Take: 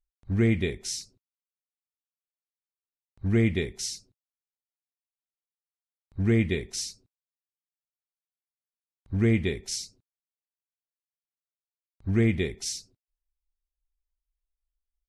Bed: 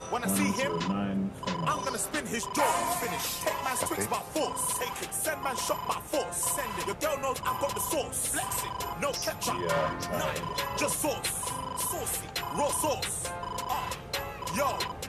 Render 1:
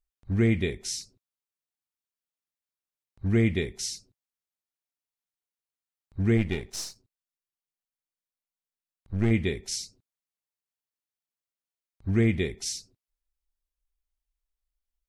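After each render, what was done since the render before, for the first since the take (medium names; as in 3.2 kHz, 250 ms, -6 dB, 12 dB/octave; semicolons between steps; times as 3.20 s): 6.37–9.31 s: partial rectifier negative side -7 dB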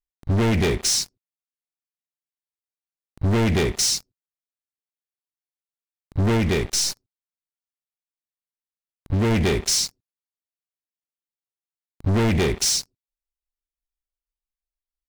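waveshaping leveller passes 5; compression, threshold -18 dBFS, peak gain reduction 3.5 dB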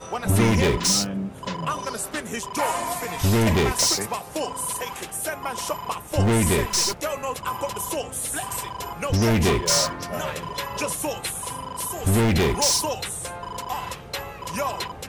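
add bed +2 dB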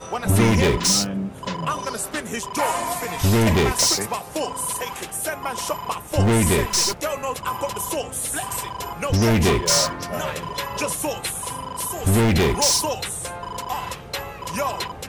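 trim +2 dB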